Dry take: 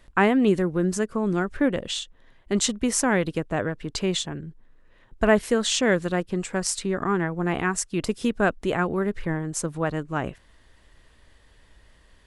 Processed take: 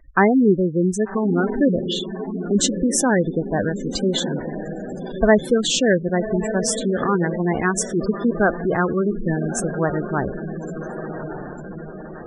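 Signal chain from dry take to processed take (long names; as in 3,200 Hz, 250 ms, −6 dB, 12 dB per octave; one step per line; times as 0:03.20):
feedback delay with all-pass diffusion 1,161 ms, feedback 53%, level −8 dB
gate on every frequency bin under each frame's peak −15 dB strong
level +4.5 dB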